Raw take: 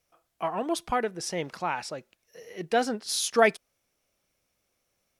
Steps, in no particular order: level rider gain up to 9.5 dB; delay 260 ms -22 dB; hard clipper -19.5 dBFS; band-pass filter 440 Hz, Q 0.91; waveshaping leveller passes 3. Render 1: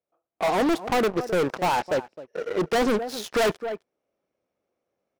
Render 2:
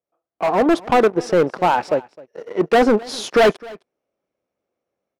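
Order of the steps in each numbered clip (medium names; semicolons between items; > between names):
band-pass filter > waveshaping leveller > delay > level rider > hard clipper; waveshaping leveller > band-pass filter > hard clipper > level rider > delay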